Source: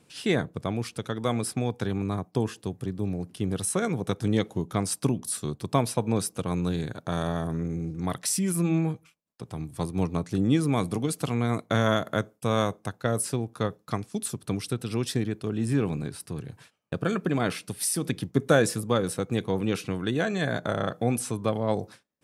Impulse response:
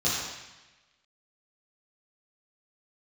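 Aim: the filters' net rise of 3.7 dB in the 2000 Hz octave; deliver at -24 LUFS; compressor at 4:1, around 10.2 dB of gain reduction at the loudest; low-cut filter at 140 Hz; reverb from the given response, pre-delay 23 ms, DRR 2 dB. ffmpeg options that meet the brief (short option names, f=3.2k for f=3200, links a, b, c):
-filter_complex "[0:a]highpass=140,equalizer=f=2k:t=o:g=5,acompressor=threshold=-26dB:ratio=4,asplit=2[a][b];[1:a]atrim=start_sample=2205,adelay=23[c];[b][c]afir=irnorm=-1:irlink=0,volume=-13.5dB[d];[a][d]amix=inputs=2:normalize=0,volume=5dB"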